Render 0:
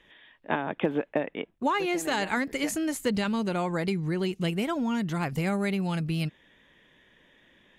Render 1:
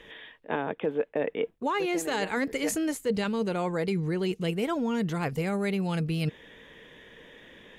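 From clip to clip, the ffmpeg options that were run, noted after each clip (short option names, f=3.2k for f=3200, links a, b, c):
-af "equalizer=f=460:w=5.6:g=10.5,areverse,acompressor=threshold=-35dB:ratio=5,areverse,volume=8.5dB"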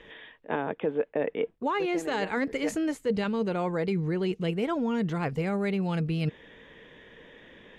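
-af "aemphasis=mode=reproduction:type=50fm"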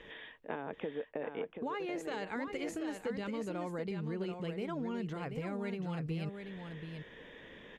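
-filter_complex "[0:a]acompressor=threshold=-34dB:ratio=6,asplit=2[a][b];[b]aecho=0:1:733:0.447[c];[a][c]amix=inputs=2:normalize=0,volume=-2dB"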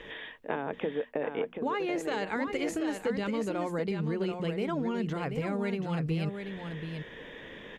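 -af "bandreject=f=60:t=h:w=6,bandreject=f=120:t=h:w=6,bandreject=f=180:t=h:w=6,bandreject=f=240:t=h:w=6,volume=7dB"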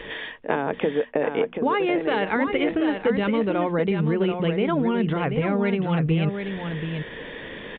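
-af "aresample=8000,aresample=44100,volume=9dB"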